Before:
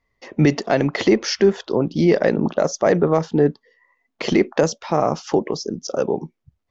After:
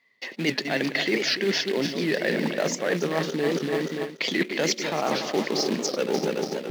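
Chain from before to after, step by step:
feedback delay that plays each chunk backwards 144 ms, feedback 68%, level −8.5 dB
bass and treble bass +1 dB, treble +4 dB
in parallel at −5 dB: log-companded quantiser 4 bits
on the sum: flat-topped bell 2,700 Hz +10.5 dB
reversed playback
downward compressor 12 to 1, threshold −21 dBFS, peak gain reduction 18 dB
reversed playback
high-pass filter 170 Hz 24 dB per octave
wow of a warped record 78 rpm, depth 160 cents

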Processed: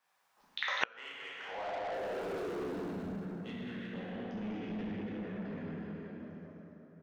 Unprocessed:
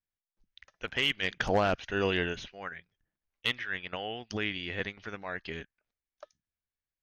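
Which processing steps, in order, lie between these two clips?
0:01.93–0:02.40: sign of each sample alone
low-shelf EQ 490 Hz +8 dB
bouncing-ball delay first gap 200 ms, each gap 0.8×, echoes 5
dense smooth reverb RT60 3.9 s, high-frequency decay 0.55×, DRR −8.5 dB
high-pass filter sweep 960 Hz → 200 Hz, 0:01.46–0:03.14
spectral tilt −2.5 dB per octave
soft clipping −13.5 dBFS, distortion −9 dB
gate with flip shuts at −31 dBFS, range −38 dB
level +16.5 dB

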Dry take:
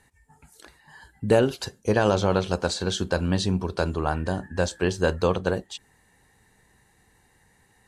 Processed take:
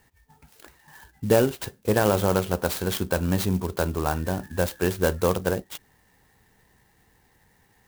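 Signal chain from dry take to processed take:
converter with an unsteady clock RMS 0.051 ms

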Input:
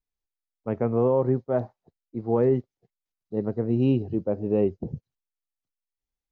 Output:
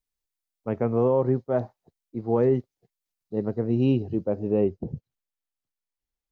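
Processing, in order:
high-shelf EQ 3,500 Hz +6 dB, from 0:04.50 −2 dB

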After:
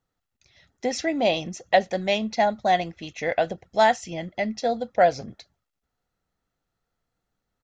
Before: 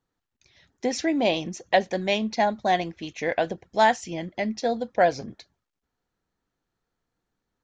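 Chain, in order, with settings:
comb filter 1.5 ms, depth 33%

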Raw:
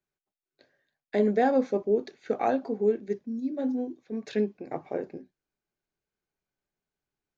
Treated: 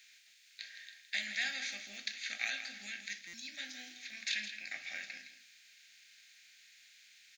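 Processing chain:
compressor on every frequency bin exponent 0.6
inverse Chebyshev high-pass filter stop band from 1,100 Hz, stop band 40 dB
in parallel at −1.5 dB: downward compressor, threshold −59 dBFS, peak gain reduction 18.5 dB
on the sum: single-tap delay 164 ms −10.5 dB
on a send at −8 dB: convolution reverb RT60 0.30 s, pre-delay 3 ms
on the sum: buffer that repeats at 0:03.27, samples 256, times 10
level +7 dB

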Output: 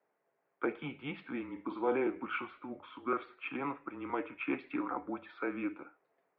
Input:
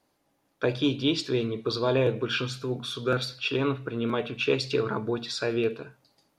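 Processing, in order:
0:01.43–0:01.96: flutter between parallel walls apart 8.2 metres, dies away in 0.24 s
single-sideband voice off tune −140 Hz 490–2,400 Hz
level −4 dB

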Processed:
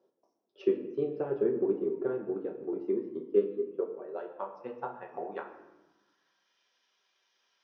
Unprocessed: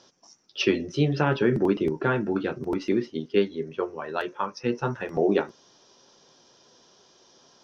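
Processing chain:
band-pass filter sweep 420 Hz → 2,200 Hz, 0:03.85–0:06.59
transient designer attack +5 dB, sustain −3 dB
high-pass filter 68 Hz
on a send: convolution reverb RT60 1.0 s, pre-delay 5 ms, DRR 3 dB
on the sum: level −7 dB

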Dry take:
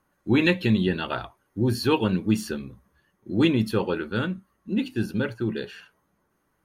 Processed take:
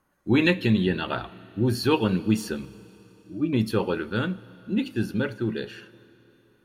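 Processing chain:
0:02.65–0:03.53: resonances in every octave D, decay 0.12 s
four-comb reverb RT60 3.6 s, combs from 26 ms, DRR 18 dB

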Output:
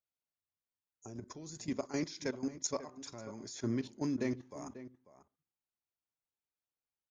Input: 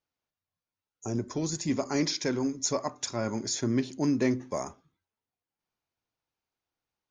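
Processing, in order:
output level in coarse steps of 14 dB
slap from a distant wall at 93 metres, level −14 dB
level −5 dB

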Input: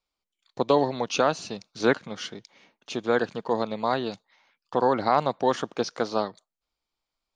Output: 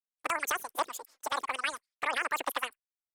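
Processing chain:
flanger swept by the level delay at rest 9.5 ms, full sweep at −18 dBFS
harmonic and percussive parts rebalanced harmonic −12 dB
brickwall limiter −18 dBFS, peak gain reduction 6.5 dB
noise gate with hold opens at −54 dBFS
wrong playback speed 33 rpm record played at 78 rpm

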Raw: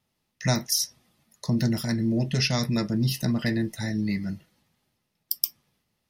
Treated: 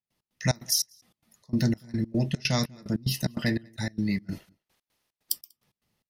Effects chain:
0:04.31–0:05.38: ceiling on every frequency bin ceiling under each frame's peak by 17 dB
gate pattern ".x.xx.xx." 147 BPM −24 dB
slap from a distant wall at 33 metres, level −29 dB

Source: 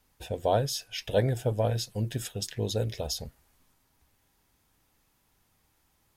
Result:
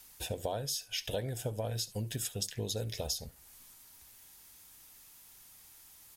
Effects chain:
parametric band 12,000 Hz +10.5 dB 2.3 octaves
downward compressor 6 to 1, threshold −33 dBFS, peak gain reduction 14 dB
on a send: single-tap delay 71 ms −20 dB
on the sum: one half of a high-frequency compander encoder only

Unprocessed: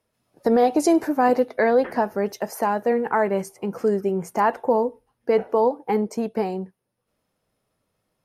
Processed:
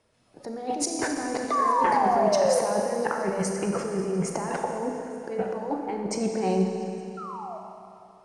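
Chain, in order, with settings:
elliptic low-pass filter 9,500 Hz, stop band 60 dB
compressor whose output falls as the input rises −30 dBFS, ratio −1
sound drawn into the spectrogram fall, 0:01.51–0:02.59, 490–1,200 Hz −24 dBFS
echo through a band-pass that steps 173 ms, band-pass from 220 Hz, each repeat 1.4 octaves, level −11 dB
sound drawn into the spectrogram fall, 0:07.17–0:07.58, 610–1,400 Hz −38 dBFS
four-comb reverb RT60 2.8 s, combs from 28 ms, DRR 2.5 dB
every ending faded ahead of time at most 200 dB per second

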